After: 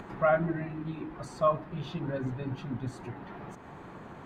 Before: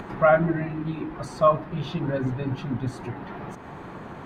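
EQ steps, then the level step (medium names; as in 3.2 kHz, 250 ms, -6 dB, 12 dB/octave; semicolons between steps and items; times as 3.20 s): peaking EQ 7.4 kHz +4 dB 0.27 oct; -7.0 dB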